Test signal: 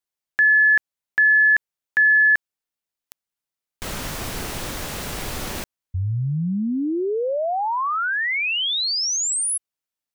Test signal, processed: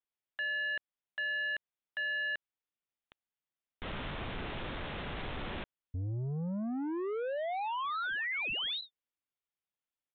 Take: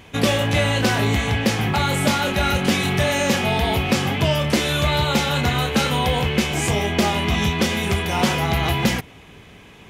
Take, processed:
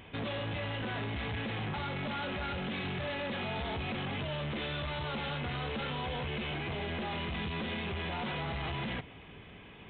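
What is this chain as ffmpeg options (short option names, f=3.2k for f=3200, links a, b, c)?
-af "alimiter=limit=-15dB:level=0:latency=1,aresample=8000,asoftclip=type=tanh:threshold=-27.5dB,aresample=44100,volume=-6dB"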